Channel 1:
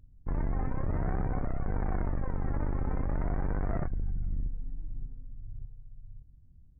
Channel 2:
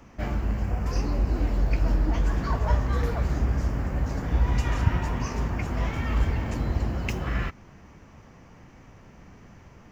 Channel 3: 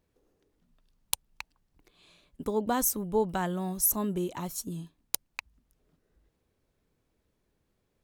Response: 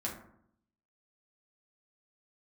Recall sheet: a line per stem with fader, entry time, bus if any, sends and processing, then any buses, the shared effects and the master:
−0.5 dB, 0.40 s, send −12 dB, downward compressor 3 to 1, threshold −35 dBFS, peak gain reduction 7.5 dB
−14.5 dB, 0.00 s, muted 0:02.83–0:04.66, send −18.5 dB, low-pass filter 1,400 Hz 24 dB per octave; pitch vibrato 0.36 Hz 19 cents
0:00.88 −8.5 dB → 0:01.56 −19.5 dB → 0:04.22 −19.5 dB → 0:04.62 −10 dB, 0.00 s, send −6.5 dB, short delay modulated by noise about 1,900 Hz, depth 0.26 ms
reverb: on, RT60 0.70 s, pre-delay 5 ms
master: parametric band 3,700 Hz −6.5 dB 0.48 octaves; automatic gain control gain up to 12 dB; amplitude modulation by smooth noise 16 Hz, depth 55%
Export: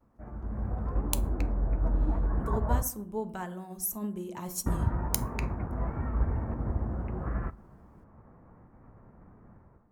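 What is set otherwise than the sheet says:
stem 1: muted
stem 3: missing short delay modulated by noise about 1,900 Hz, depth 0.26 ms

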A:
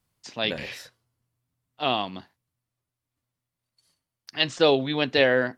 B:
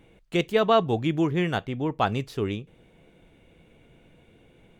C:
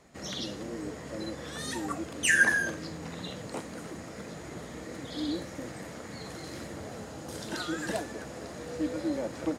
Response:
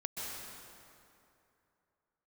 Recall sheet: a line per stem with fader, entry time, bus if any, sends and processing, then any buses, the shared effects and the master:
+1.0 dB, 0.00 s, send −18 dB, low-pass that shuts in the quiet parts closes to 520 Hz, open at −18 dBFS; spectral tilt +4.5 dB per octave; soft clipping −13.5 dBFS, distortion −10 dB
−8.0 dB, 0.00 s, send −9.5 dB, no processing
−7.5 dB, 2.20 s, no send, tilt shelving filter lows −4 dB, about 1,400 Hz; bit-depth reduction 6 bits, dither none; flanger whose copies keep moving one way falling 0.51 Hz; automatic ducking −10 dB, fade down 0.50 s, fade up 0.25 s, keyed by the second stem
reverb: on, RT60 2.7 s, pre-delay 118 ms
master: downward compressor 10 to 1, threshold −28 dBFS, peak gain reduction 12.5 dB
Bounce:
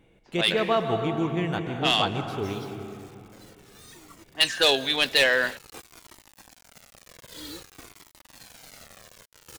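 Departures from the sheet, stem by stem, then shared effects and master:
stem B: send −9.5 dB → −1 dB
stem C −7.5 dB → −0.5 dB
master: missing downward compressor 10 to 1, threshold −28 dBFS, peak gain reduction 12.5 dB

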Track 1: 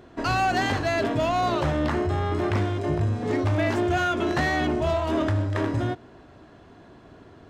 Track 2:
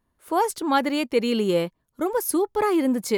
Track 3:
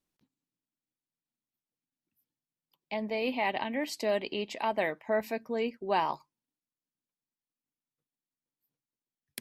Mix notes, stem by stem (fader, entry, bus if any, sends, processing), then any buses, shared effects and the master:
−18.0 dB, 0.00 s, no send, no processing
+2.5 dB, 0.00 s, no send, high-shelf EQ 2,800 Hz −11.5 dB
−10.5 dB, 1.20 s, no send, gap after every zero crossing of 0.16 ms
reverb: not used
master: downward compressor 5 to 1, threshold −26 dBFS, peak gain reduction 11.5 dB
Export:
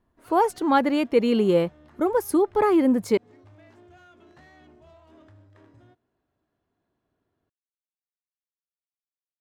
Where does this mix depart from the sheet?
stem 1 −18.0 dB → −29.0 dB
stem 3: muted
master: missing downward compressor 5 to 1, threshold −26 dBFS, peak gain reduction 11.5 dB

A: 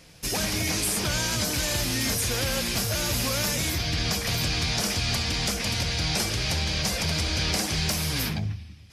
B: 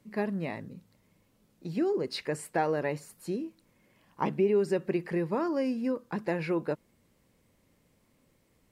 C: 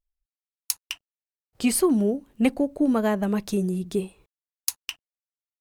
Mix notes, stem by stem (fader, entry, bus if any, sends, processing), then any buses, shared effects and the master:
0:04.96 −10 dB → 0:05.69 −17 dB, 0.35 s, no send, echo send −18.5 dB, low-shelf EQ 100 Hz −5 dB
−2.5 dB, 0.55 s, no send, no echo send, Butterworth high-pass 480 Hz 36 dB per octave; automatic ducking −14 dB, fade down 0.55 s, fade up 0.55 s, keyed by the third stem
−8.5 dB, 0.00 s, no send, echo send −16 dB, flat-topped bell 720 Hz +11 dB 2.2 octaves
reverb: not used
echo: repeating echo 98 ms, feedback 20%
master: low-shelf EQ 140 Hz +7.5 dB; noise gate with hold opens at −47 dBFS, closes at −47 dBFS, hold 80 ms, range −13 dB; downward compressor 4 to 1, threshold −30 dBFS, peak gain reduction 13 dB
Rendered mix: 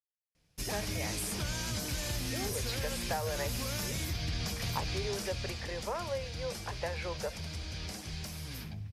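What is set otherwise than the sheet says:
stem A: missing low-shelf EQ 100 Hz −5 dB
stem C: muted

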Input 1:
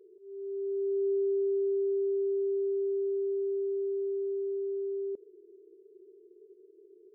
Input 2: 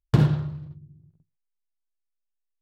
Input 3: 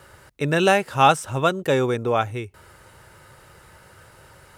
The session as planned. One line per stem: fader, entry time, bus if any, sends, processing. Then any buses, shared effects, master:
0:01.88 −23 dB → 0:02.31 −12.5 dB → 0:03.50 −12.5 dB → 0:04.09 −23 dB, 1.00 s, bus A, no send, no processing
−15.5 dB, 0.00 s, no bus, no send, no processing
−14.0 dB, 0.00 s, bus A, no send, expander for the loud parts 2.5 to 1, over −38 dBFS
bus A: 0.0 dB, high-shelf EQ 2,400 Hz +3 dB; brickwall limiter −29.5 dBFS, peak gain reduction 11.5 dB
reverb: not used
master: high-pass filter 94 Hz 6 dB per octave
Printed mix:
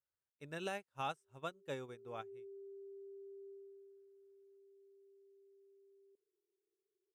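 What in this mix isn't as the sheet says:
stem 1 −23.0 dB → −34.0 dB
stem 2: muted
master: missing high-pass filter 94 Hz 6 dB per octave

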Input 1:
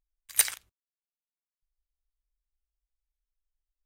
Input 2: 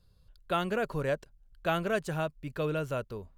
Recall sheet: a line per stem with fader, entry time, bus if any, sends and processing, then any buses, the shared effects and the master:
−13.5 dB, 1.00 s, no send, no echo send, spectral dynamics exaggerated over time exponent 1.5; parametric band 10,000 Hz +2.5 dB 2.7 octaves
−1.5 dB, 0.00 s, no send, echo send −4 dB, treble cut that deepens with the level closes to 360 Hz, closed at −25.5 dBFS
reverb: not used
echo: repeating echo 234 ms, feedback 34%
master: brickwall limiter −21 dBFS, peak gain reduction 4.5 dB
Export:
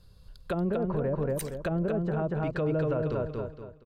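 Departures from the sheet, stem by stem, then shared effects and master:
stem 1: missing parametric band 10,000 Hz +2.5 dB 2.7 octaves
stem 2 −1.5 dB → +8.5 dB

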